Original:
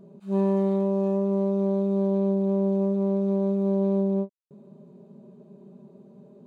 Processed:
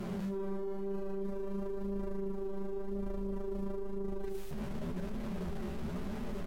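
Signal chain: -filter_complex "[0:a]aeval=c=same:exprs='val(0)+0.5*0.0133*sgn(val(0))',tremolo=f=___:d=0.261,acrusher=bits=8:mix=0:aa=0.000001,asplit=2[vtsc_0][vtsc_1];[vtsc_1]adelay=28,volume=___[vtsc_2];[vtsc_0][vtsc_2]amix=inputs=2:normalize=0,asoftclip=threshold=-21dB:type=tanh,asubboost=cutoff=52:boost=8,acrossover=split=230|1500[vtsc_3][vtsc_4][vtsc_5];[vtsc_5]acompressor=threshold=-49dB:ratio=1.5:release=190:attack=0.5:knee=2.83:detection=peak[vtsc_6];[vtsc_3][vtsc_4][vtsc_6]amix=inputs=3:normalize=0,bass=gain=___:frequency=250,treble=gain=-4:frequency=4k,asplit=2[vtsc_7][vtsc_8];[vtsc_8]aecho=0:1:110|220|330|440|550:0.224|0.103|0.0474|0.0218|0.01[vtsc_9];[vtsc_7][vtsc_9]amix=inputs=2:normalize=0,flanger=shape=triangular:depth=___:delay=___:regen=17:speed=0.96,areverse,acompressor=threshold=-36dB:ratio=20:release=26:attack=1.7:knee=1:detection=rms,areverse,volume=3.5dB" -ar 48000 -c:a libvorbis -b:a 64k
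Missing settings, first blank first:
170, -8dB, 8, 6.3, 8.3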